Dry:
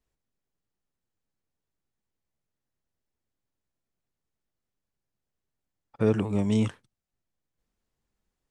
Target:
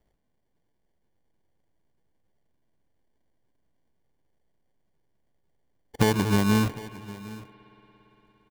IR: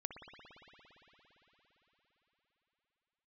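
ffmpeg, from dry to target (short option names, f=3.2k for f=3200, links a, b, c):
-filter_complex "[0:a]acompressor=threshold=-27dB:ratio=6,acrusher=samples=34:mix=1:aa=0.000001,aecho=1:1:757:0.119,asplit=2[a][b];[1:a]atrim=start_sample=2205[c];[b][c]afir=irnorm=-1:irlink=0,volume=-9.5dB[d];[a][d]amix=inputs=2:normalize=0,volume=7.5dB"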